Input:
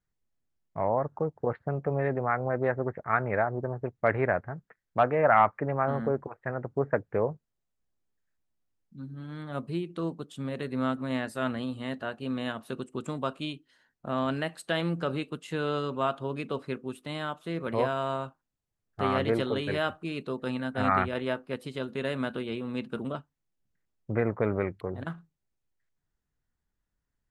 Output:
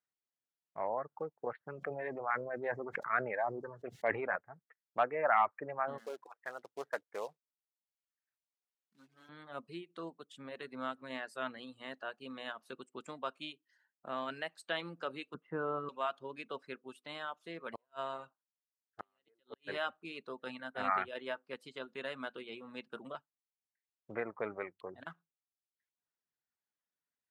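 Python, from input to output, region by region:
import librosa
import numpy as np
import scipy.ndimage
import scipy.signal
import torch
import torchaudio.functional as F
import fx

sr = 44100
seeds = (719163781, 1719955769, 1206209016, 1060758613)

y = fx.chain(x, sr, fx.filter_lfo_notch(shape='saw_up', hz=1.5, low_hz=620.0, high_hz=2000.0, q=2.7),
    fx.sustainer(db_per_s=21.0), at=(1.64, 4.36))
y = fx.chain(y, sr, fx.highpass(hz=570.0, slope=6),
    fx.quant_float(bits=2), at=(5.98, 9.29))
y = fx.chain(y, sr, fx.lowpass_res(hz=1300.0, q=1.7),
    fx.tilt_eq(slope=-3.5), at=(15.34, 15.89))
y = fx.chain(y, sr, fx.gate_flip(shuts_db=-17.0, range_db=-37),
    fx.notch(hz=2300.0, q=9.8), at=(17.73, 19.76))
y = fx.high_shelf(y, sr, hz=9400.0, db=-7.0)
y = fx.dereverb_blind(y, sr, rt60_s=0.79)
y = fx.weighting(y, sr, curve='A')
y = y * 10.0 ** (-6.0 / 20.0)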